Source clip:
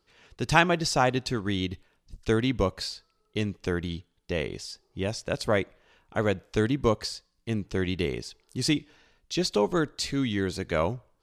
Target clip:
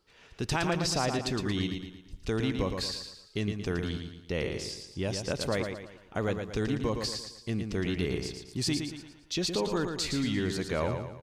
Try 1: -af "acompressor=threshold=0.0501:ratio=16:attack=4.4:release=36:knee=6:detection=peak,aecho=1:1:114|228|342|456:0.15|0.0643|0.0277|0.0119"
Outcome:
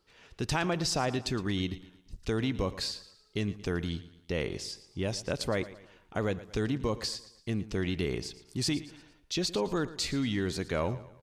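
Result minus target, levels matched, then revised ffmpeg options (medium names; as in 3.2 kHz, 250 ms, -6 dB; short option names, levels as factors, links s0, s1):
echo-to-direct -10.5 dB
-af "acompressor=threshold=0.0501:ratio=16:attack=4.4:release=36:knee=6:detection=peak,aecho=1:1:114|228|342|456|570:0.501|0.216|0.0927|0.0398|0.0171"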